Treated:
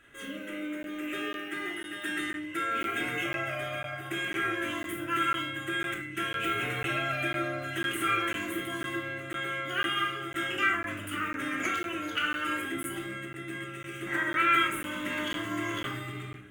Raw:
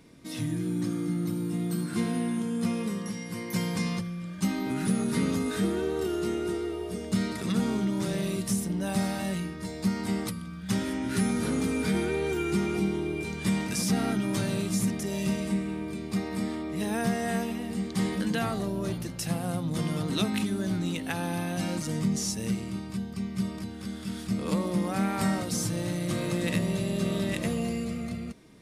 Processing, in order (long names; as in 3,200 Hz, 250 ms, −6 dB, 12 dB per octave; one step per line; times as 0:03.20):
wrong playback speed 45 rpm record played at 78 rpm
drawn EQ curve 110 Hz 0 dB, 190 Hz −9 dB, 930 Hz −11 dB, 1,400 Hz +14 dB, 3,100 Hz +7 dB, 4,500 Hz −17 dB, 8,400 Hz −2 dB, 14,000 Hz −9 dB
rectangular room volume 900 cubic metres, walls furnished, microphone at 2.9 metres
regular buffer underruns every 0.50 s, samples 512, zero, from 0:00.83
level −4.5 dB